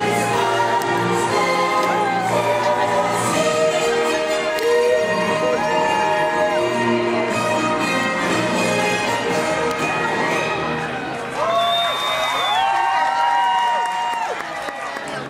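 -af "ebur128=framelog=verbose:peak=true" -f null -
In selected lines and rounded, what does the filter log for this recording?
Integrated loudness:
  I:         -18.7 LUFS
  Threshold: -28.7 LUFS
Loudness range:
  LRA:         1.7 LU
  Threshold: -38.6 LUFS
  LRA low:   -19.7 LUFS
  LRA high:  -18.0 LUFS
True peak:
  Peak:       -6.6 dBFS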